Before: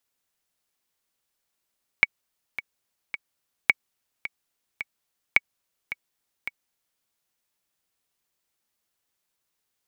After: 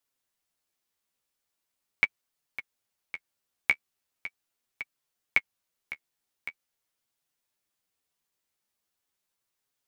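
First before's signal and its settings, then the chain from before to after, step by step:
metronome 108 bpm, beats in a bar 3, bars 3, 2240 Hz, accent 14.5 dB -2.5 dBFS
flange 0.41 Hz, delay 6.7 ms, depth 7.9 ms, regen +22%

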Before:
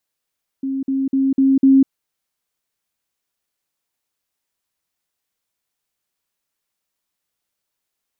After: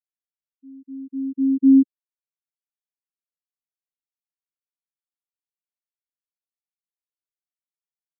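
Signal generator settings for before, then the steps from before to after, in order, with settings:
level ladder 269 Hz -19.5 dBFS, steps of 3 dB, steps 5, 0.20 s 0.05 s
spectral expander 2.5:1

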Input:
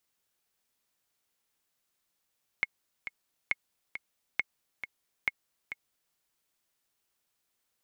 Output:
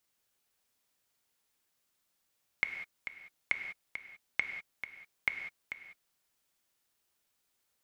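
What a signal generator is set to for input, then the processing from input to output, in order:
metronome 136 bpm, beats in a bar 2, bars 4, 2170 Hz, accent 10.5 dB -13.5 dBFS
non-linear reverb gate 0.22 s flat, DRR 6 dB

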